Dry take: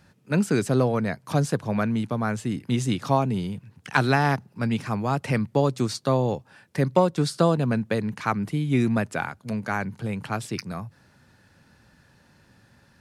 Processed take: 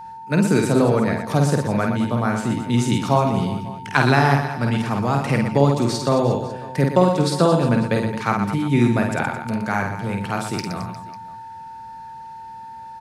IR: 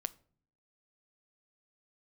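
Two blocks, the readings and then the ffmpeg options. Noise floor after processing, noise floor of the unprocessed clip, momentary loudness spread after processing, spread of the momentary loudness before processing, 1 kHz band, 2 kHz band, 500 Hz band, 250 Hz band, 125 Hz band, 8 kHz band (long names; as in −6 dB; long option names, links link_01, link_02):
−37 dBFS, −59 dBFS, 20 LU, 9 LU, +6.0 dB, +5.0 dB, +5.0 dB, +5.0 dB, +5.0 dB, +5.0 dB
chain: -af "aecho=1:1:50|120|218|355.2|547.3:0.631|0.398|0.251|0.158|0.1,aeval=exprs='val(0)+0.0141*sin(2*PI*900*n/s)':channel_layout=same,volume=3dB"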